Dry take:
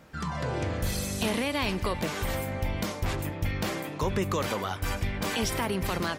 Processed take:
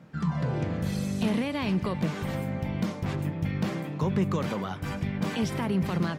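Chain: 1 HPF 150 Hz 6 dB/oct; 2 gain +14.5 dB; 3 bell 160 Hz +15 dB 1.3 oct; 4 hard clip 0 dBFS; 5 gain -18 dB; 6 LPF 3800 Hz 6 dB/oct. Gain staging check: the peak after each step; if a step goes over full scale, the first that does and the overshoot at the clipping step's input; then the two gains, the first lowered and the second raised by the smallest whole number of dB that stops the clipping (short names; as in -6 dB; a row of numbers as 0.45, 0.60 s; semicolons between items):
-16.0, -1.5, +4.0, 0.0, -18.0, -18.0 dBFS; step 3, 4.0 dB; step 2 +10.5 dB, step 5 -14 dB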